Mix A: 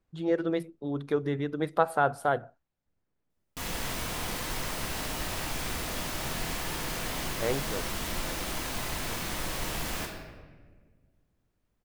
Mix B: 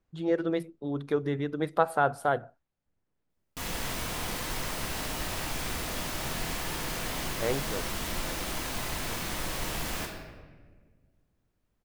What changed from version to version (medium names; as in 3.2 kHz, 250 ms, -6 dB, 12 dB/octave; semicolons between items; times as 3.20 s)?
no change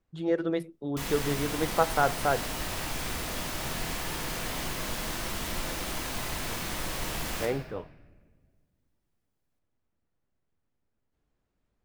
background: entry -2.60 s